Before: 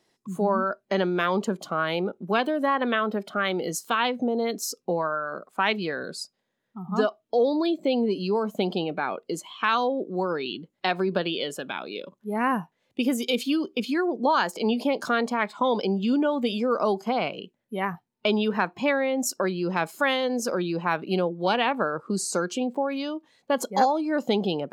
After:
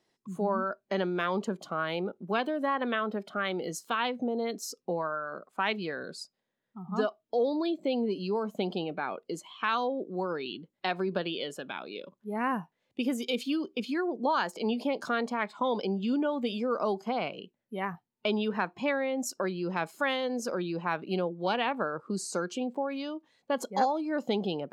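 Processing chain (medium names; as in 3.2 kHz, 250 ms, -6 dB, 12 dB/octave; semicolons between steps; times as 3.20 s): treble shelf 9.8 kHz -7.5 dB; trim -5.5 dB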